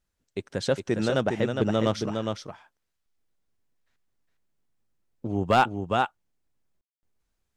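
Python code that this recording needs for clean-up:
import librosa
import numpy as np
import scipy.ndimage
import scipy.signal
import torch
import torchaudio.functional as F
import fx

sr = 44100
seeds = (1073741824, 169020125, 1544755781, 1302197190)

y = fx.fix_declip(x, sr, threshold_db=-11.5)
y = fx.fix_ambience(y, sr, seeds[0], print_start_s=2.69, print_end_s=3.19, start_s=6.81, end_s=7.03)
y = fx.fix_echo_inverse(y, sr, delay_ms=410, level_db=-5.0)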